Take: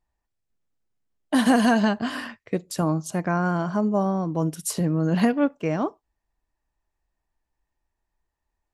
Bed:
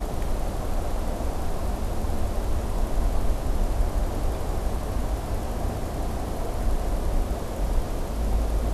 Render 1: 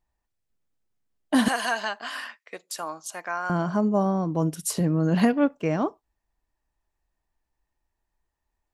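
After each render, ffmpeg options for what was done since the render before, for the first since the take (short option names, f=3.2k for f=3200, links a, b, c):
-filter_complex "[0:a]asettb=1/sr,asplit=3[a][b][c];[a]atrim=end=1.484[d];[b]atrim=start=1.48:end=3.5,asetpts=PTS-STARTPTS,afade=t=in:d=0.004:c=qsin,afade=t=out:st=2.016:d=0.004:c=qsin,highpass=900[e];[c]atrim=start=3.496[f];[d][e]acrossfade=d=0.004:c1=hsin:c2=qsin[g];[g][f]acrossfade=d=0.004:c1=qsin:c2=hsin"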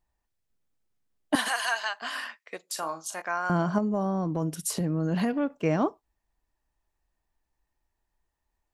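-filter_complex "[0:a]asettb=1/sr,asplit=3[a][b][c];[a]atrim=end=1.354[d];[b]atrim=start=1.35:end=2.02,asetpts=PTS-STARTPTS,afade=t=in:d=0.004:c=qsin,afade=t=out:st=0.666:d=0.004:c=qsin,highpass=880[e];[c]atrim=start=2.016[f];[d][e]acrossfade=d=0.004:c1=hsin:c2=qsin[g];[g][f]acrossfade=d=0.004:c1=qsin:c2=hsin,asettb=1/sr,asplit=3[h][i][j];[h]atrim=end=2.664[k];[i]atrim=start=2.66:end=3.22,asetpts=PTS-STARTPTS,afade=t=in:d=0.004:c=qsin,afade=t=out:st=0.556:d=0.004:c=qsin,asplit=2[l][m];[m]adelay=37,volume=-8.5dB[n];[l][n]amix=inputs=2:normalize=0,atrim=end_sample=24696[o];[j]atrim=start=3.216[p];[k][o]acrossfade=d=0.004:c1=hsin:c2=qsin[q];[q][p]acrossfade=d=0.004:c1=qsin:c2=hsin,asettb=1/sr,asplit=3[r][s][t];[r]atrim=end=3.784[u];[s]atrim=start=3.78:end=5.51,asetpts=PTS-STARTPTS,afade=t=in:d=0.004:c=qsin,afade=t=out:st=1.726:d=0.004:c=qsin,acompressor=threshold=-25dB:ratio=3:attack=3.2:release=140:knee=1:detection=peak[v];[t]atrim=start=5.506[w];[u][v]acrossfade=d=0.004:c1=hsin:c2=qsin[x];[x][w]acrossfade=d=0.004:c1=qsin:c2=hsin"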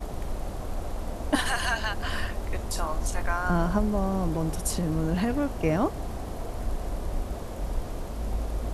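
-filter_complex "[1:a]volume=-5.5dB[a];[0:a][a]amix=inputs=2:normalize=0"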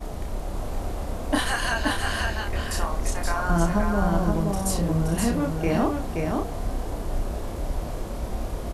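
-filter_complex "[0:a]asplit=2[a][b];[b]adelay=30,volume=-3.5dB[c];[a][c]amix=inputs=2:normalize=0,aecho=1:1:524:0.668"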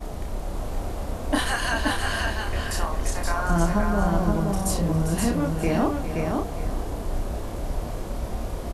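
-af "aecho=1:1:405:0.251"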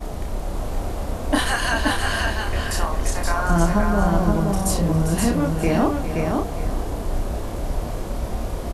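-af "volume=3.5dB"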